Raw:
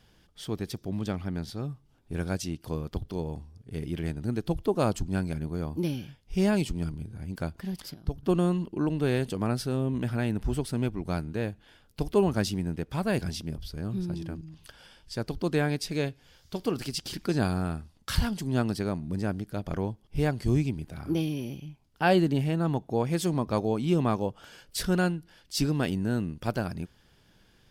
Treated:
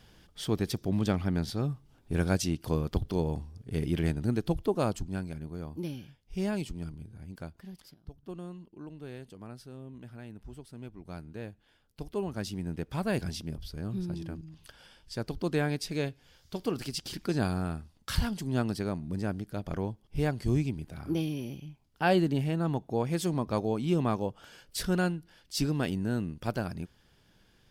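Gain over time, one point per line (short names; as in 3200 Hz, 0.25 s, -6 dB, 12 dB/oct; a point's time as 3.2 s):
4.05 s +3.5 dB
5.3 s -7 dB
7.19 s -7 dB
8.3 s -17 dB
10.7 s -17 dB
11.31 s -10 dB
12.29 s -10 dB
12.78 s -2.5 dB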